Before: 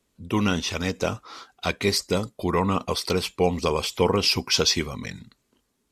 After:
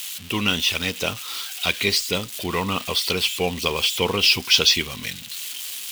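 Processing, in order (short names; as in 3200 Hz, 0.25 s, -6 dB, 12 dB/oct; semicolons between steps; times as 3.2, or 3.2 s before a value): switching spikes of -23.5 dBFS; bell 3000 Hz +14 dB 1.1 oct; gain -3 dB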